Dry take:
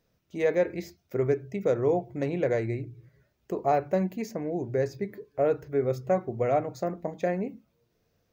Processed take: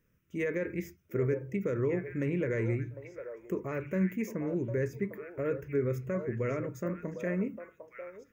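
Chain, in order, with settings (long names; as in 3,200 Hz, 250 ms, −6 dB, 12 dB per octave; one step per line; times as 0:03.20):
brickwall limiter −19.5 dBFS, peak gain reduction 6.5 dB
phaser with its sweep stopped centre 1,800 Hz, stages 4
on a send: echo through a band-pass that steps 752 ms, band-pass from 710 Hz, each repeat 1.4 octaves, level −4 dB
on the sum: level +1.5 dB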